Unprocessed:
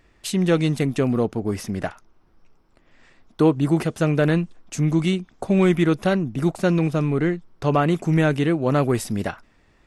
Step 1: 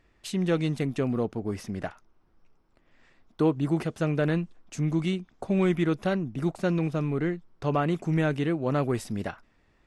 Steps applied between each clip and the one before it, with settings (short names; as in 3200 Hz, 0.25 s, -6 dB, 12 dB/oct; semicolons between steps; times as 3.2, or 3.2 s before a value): high shelf 8900 Hz -8.5 dB; gain -6.5 dB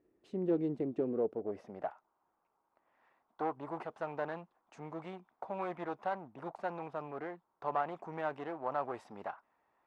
one-sided clip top -32.5 dBFS; band-pass sweep 360 Hz -> 900 Hz, 1.01–2.09; gain +1 dB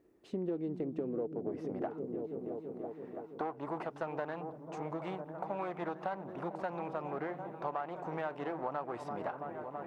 on a send: repeats that get brighter 0.332 s, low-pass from 200 Hz, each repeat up 1 oct, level -6 dB; on the sum: compressor 6:1, threshold -39 dBFS, peak gain reduction 12 dB; gain +5.5 dB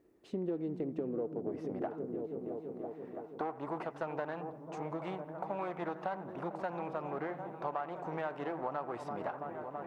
band-limited delay 83 ms, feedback 49%, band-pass 1100 Hz, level -15 dB